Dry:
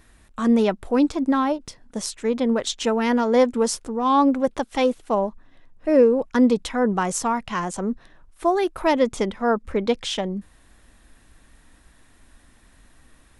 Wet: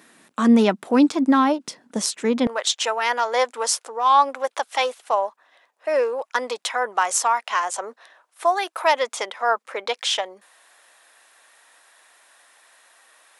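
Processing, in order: HPF 190 Hz 24 dB/oct, from 2.47 s 570 Hz; dynamic EQ 470 Hz, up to -5 dB, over -33 dBFS, Q 1.1; gain +5.5 dB

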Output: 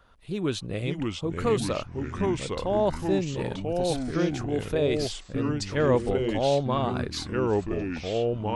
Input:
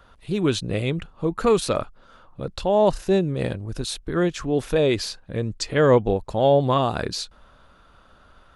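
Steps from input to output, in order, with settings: 6.51–6.96 air absorption 51 m; echoes that change speed 0.489 s, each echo -3 st, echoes 3; gain -6.5 dB

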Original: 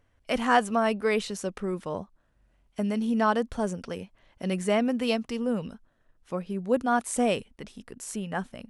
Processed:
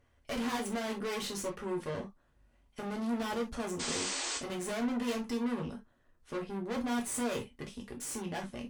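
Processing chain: tube stage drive 37 dB, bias 0.7; painted sound noise, 3.79–4.38, 250–8900 Hz -40 dBFS; non-linear reverb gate 90 ms falling, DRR 0.5 dB; gain +1 dB

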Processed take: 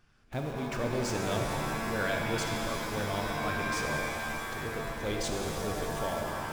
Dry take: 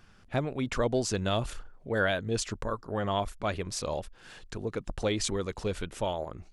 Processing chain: in parallel at -5 dB: Schmitt trigger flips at -39.5 dBFS; on the sum: shimmer reverb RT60 3.4 s, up +7 st, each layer -2 dB, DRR 1 dB; gain -8.5 dB

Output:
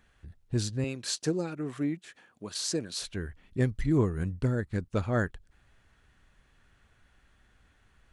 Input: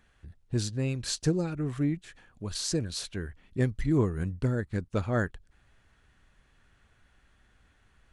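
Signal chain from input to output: 0.84–3.02 HPF 220 Hz 12 dB/oct

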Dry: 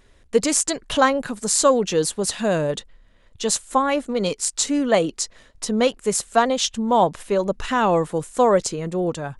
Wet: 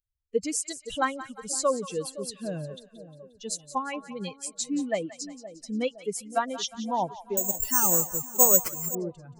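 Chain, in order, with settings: per-bin expansion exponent 2; split-band echo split 740 Hz, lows 0.516 s, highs 0.177 s, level -14 dB; 7.37–8.95 careless resampling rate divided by 6×, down none, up zero stuff; gain -6.5 dB

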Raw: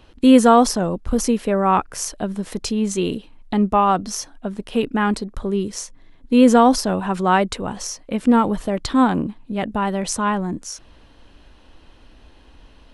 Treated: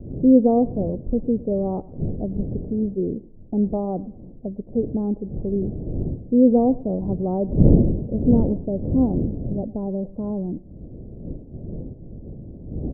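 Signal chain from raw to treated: wind noise 210 Hz -24 dBFS; steep low-pass 620 Hz 36 dB/oct; on a send: feedback echo 0.108 s, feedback 33%, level -21 dB; on the sum: gain -2.5 dB

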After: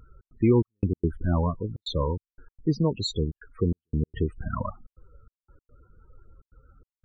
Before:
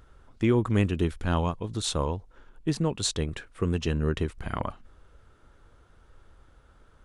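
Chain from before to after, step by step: loudest bins only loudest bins 16; step gate "xx.xxx..x.xxxxx" 145 bpm -60 dB; gain +3 dB

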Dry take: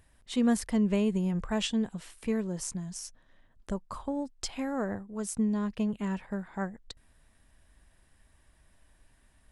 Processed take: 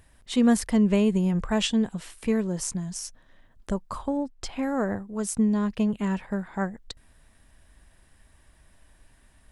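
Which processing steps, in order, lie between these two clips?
4.17–4.63 high shelf 3500 Hz -10 dB; gain +5.5 dB

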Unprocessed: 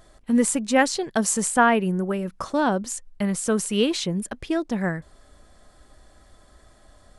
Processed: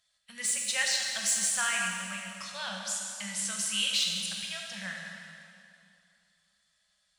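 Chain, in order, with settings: weighting filter D; gate -47 dBFS, range -12 dB; elliptic band-stop 210–530 Hz; passive tone stack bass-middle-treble 5-5-5; soft clip -18 dBFS, distortion -17 dB; plate-style reverb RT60 2.6 s, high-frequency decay 0.9×, DRR -0.5 dB; gain -2.5 dB

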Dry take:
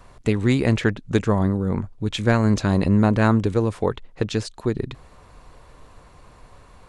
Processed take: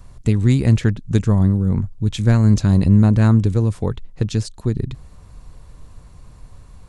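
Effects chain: tone controls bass +14 dB, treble +9 dB; gain -5.5 dB

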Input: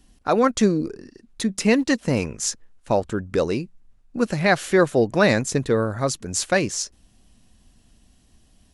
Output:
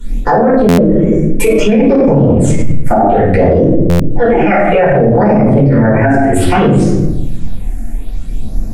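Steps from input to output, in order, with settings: treble ducked by the level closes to 1400 Hz, closed at -18.5 dBFS; graphic EQ 1000/4000/8000 Hz -5/-10/-6 dB; downsampling 22050 Hz; formant shift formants +4 st; phaser stages 8, 0.61 Hz, lowest notch 130–3200 Hz; shoebox room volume 180 m³, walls mixed, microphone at 4.6 m; maximiser +18.5 dB; stuck buffer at 0.68/3.89, samples 512, times 8; gain -1 dB

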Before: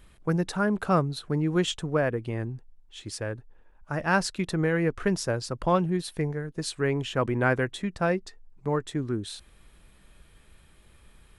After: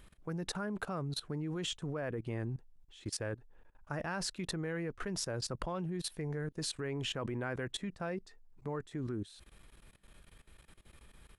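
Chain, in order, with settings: low shelf 86 Hz -2 dB; level quantiser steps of 19 dB; gain +1 dB

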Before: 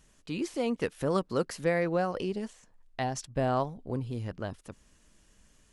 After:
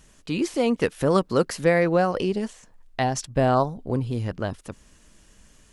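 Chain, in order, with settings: spectral gain 3.55–3.77, 1600–3500 Hz -12 dB; gain +8 dB

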